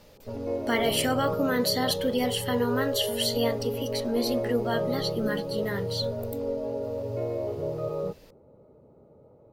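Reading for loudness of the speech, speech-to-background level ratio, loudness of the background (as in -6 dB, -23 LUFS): -28.5 LUFS, 3.0 dB, -31.5 LUFS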